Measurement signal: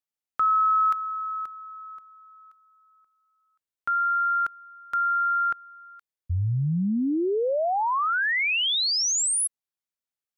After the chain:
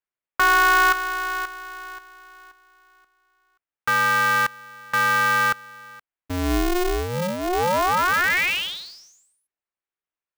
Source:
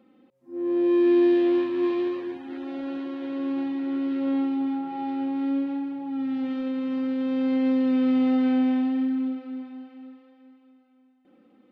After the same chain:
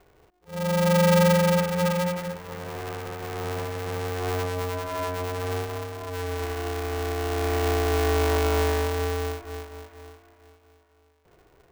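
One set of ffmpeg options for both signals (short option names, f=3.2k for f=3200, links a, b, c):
-af "highpass=120,equalizer=f=120:t=q:w=4:g=3,equalizer=f=280:t=q:w=4:g=-8,equalizer=f=440:t=q:w=4:g=-9,lowpass=f=2.5k:w=0.5412,lowpass=f=2.5k:w=1.3066,aeval=exprs='val(0)*sgn(sin(2*PI*180*n/s))':c=same,volume=4.5dB"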